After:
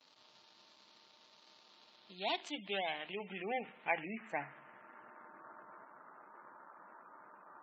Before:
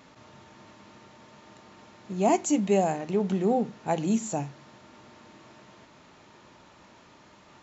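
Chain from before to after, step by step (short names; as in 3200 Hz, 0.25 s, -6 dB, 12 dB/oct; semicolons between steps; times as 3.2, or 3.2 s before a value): median filter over 25 samples; in parallel at -2.5 dB: compressor, threshold -36 dBFS, peak gain reduction 16 dB; on the sum: gate with hold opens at -45 dBFS; band-pass sweep 4400 Hz -> 1400 Hz, 1.66–5.5; on a send at -21.5 dB: reverb RT60 1.2 s, pre-delay 6 ms; on the sum: spectral gate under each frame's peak -20 dB strong; dynamic EQ 1700 Hz, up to +4 dB, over -59 dBFS, Q 0.78; gain +5.5 dB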